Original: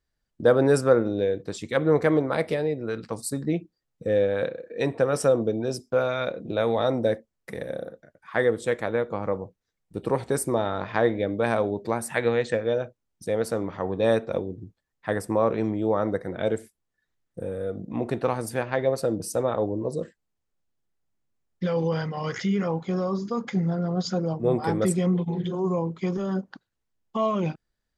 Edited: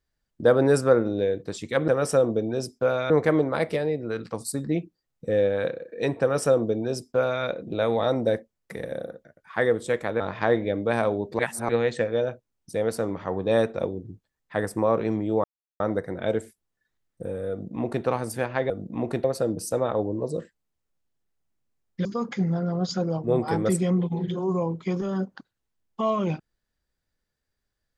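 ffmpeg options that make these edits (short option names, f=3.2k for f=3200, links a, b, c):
-filter_complex "[0:a]asplit=10[a][b][c][d][e][f][g][h][i][j];[a]atrim=end=1.882[k];[b]atrim=start=4.988:end=6.212[l];[c]atrim=start=1.878:end=8.982[m];[d]atrim=start=10.728:end=11.922[n];[e]atrim=start=11.918:end=12.222,asetpts=PTS-STARTPTS,areverse[o];[f]atrim=start=12.218:end=15.97,asetpts=PTS-STARTPTS,afade=t=out:st=3.748:d=0.004:c=hsin,apad=pad_dur=0.36[p];[g]atrim=start=15.97:end=18.872,asetpts=PTS-STARTPTS,afade=t=in:d=0.004:c=hsin[q];[h]atrim=start=17.678:end=18.222[r];[i]atrim=start=18.868:end=21.682[s];[j]atrim=start=23.208[t];[k][l]acrossfade=d=0.004:c1=hsin:c2=hsin[u];[u][m]acrossfade=d=0.004:c1=hsin:c2=hsin[v];[v][n]acrossfade=d=0.004:c1=hsin:c2=hsin[w];[w][o]acrossfade=d=0.004:c1=hsin:c2=hsin[x];[p][q]concat=n=2:v=0:a=1[y];[x][y]acrossfade=d=0.004:c1=hsin:c2=hsin[z];[z][r]acrossfade=d=0.004:c1=hsin:c2=hsin[aa];[aa][s]acrossfade=d=0.004:c1=hsin:c2=hsin[ab];[ab][t]acrossfade=d=0.004:c1=hsin:c2=hsin"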